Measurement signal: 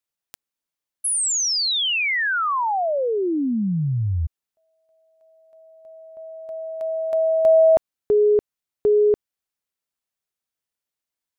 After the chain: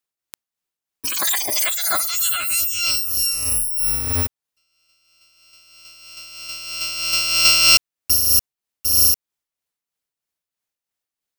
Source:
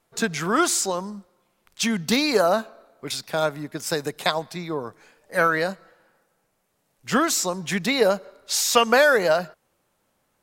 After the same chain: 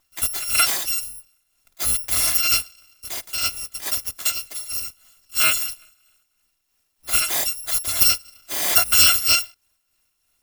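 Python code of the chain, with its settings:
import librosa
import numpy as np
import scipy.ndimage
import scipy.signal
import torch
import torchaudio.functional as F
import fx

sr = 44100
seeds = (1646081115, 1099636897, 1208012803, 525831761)

y = fx.bit_reversed(x, sr, seeds[0], block=256)
y = y * (1.0 - 0.48 / 2.0 + 0.48 / 2.0 * np.cos(2.0 * np.pi * 3.1 * (np.arange(len(y)) / sr)))
y = F.gain(torch.from_numpy(y), 3.0).numpy()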